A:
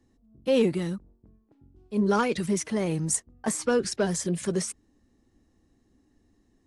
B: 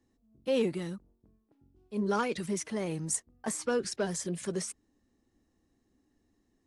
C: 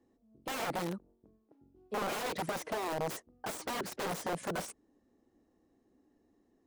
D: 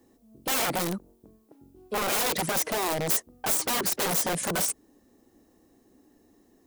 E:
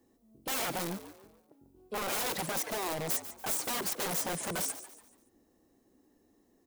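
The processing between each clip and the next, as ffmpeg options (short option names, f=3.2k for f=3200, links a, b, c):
-af "lowshelf=f=190:g=-5,volume=-5dB"
-af "aeval=exprs='(mod(35.5*val(0)+1,2)-1)/35.5':c=same,equalizer=f=520:w=0.4:g=13.5,volume=-7dB"
-filter_complex "[0:a]asplit=2[a][b];[b]aeval=exprs='0.0631*sin(PI/2*2.82*val(0)/0.0631)':c=same,volume=-7dB[c];[a][c]amix=inputs=2:normalize=0,crystalizer=i=2:c=0"
-filter_complex "[0:a]asplit=5[a][b][c][d][e];[b]adelay=143,afreqshift=100,volume=-13dB[f];[c]adelay=286,afreqshift=200,volume=-21.2dB[g];[d]adelay=429,afreqshift=300,volume=-29.4dB[h];[e]adelay=572,afreqshift=400,volume=-37.5dB[i];[a][f][g][h][i]amix=inputs=5:normalize=0,volume=-7dB"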